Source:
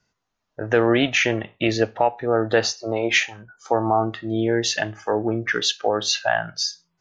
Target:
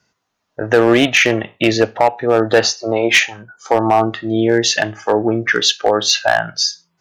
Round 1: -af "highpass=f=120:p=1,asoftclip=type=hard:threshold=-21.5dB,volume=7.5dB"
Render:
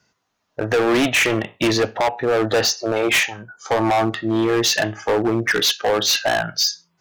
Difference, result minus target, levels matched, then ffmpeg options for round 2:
hard clip: distortion +12 dB
-af "highpass=f=120:p=1,asoftclip=type=hard:threshold=-11.5dB,volume=7.5dB"

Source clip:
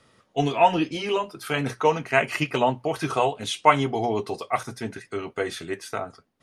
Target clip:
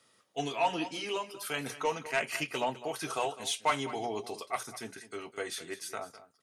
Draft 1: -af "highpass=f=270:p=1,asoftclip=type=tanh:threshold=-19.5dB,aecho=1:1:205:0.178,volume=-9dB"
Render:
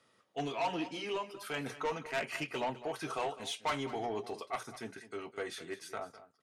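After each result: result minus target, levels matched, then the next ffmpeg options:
soft clip: distortion +8 dB; 8000 Hz band -5.5 dB
-af "highpass=f=270:p=1,asoftclip=type=tanh:threshold=-10dB,aecho=1:1:205:0.178,volume=-9dB"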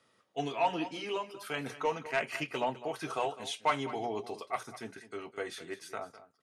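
8000 Hz band -7.5 dB
-af "highpass=f=270:p=1,highshelf=f=4.5k:g=12,asoftclip=type=tanh:threshold=-10dB,aecho=1:1:205:0.178,volume=-9dB"

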